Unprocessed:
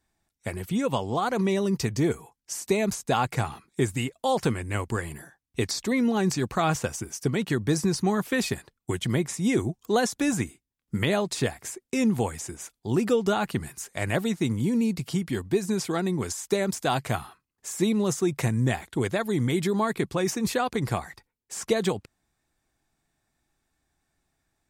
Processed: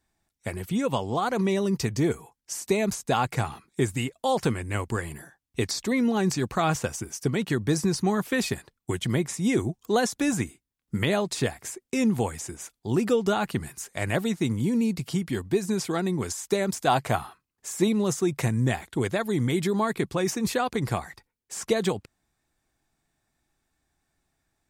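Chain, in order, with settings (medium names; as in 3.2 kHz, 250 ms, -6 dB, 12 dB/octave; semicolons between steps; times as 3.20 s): 16.87–17.88 s: dynamic bell 750 Hz, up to +5 dB, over -38 dBFS, Q 0.78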